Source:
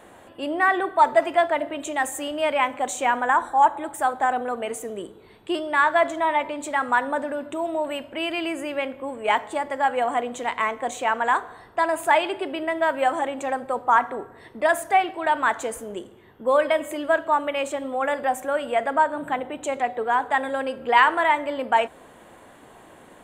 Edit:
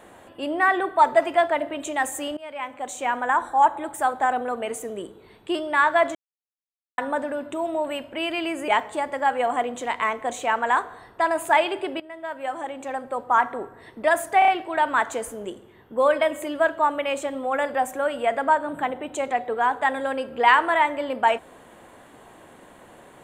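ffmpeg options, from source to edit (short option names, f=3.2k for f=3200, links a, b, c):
-filter_complex "[0:a]asplit=9[a][b][c][d][e][f][g][h][i];[a]atrim=end=2.37,asetpts=PTS-STARTPTS,afade=t=out:st=2.366:d=0.004:c=hsin:silence=0.0944061[j];[b]atrim=start=2.37:end=6.15,asetpts=PTS-STARTPTS,afade=t=in:d=1.59:c=qsin:silence=0.0944061,afade=t=out:st=3.776:d=0.004:c=hsin[k];[c]atrim=start=6.15:end=6.98,asetpts=PTS-STARTPTS,volume=0[l];[d]atrim=start=6.98:end=8.682,asetpts=PTS-STARTPTS,afade=t=in:d=0.004:c=hsin[m];[e]atrim=start=9.258:end=12.58,asetpts=PTS-STARTPTS,afade=t=out:st=3.318:d=0.004:c=hsin:silence=0.141254[n];[f]atrim=start=12.58:end=15.002,asetpts=PTS-STARTPTS,afade=t=in:d=1.6:silence=0.141254[o];[g]atrim=start=14.968:end=15.002[p];[h]atrim=start=14.968:end=15.002[q];[i]atrim=start=14.968[r];[j][k][l][m]concat=n=4:v=0:a=1[s];[n][o]concat=n=2:v=0:a=1[t];[s][t]acrossfade=d=0.004:c1=hsin:c2=hsin[u];[u][p]acrossfade=d=0.004:c1=hsin:c2=hsin[v];[v][q]acrossfade=d=0.004:c1=hsin:c2=hsin[w];[w][r]acrossfade=d=0.004:c1=hsin:c2=hsin"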